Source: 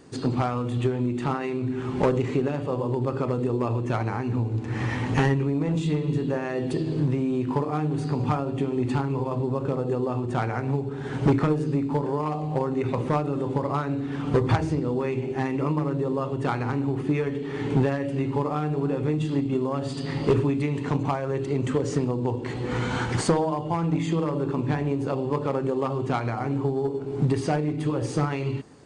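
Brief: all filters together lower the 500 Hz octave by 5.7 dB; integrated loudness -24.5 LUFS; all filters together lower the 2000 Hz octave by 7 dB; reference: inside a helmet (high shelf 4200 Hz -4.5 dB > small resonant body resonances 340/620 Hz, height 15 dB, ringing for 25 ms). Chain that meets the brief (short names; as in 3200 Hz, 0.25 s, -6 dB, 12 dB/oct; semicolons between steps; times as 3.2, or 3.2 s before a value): bell 500 Hz -7 dB; bell 2000 Hz -8 dB; high shelf 4200 Hz -4.5 dB; small resonant body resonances 340/620 Hz, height 15 dB, ringing for 25 ms; gain -4 dB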